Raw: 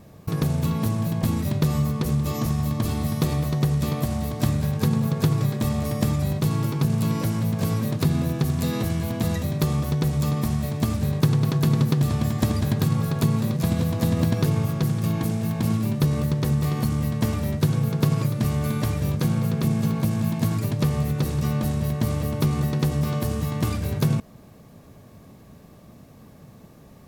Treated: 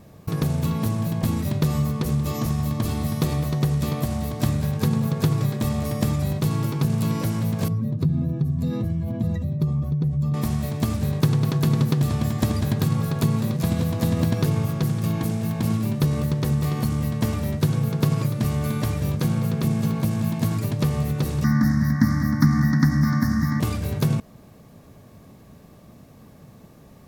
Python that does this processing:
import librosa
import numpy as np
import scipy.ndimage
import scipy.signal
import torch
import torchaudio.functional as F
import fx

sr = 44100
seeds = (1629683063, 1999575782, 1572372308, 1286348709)

y = fx.spec_expand(x, sr, power=1.6, at=(7.68, 10.34))
y = fx.curve_eq(y, sr, hz=(120.0, 190.0, 280.0, 410.0, 730.0, 1900.0, 2700.0, 5400.0, 7800.0, 14000.0), db=(0, 8, 11, -27, -4, 14, -27, 8, -10, -1), at=(21.44, 23.6))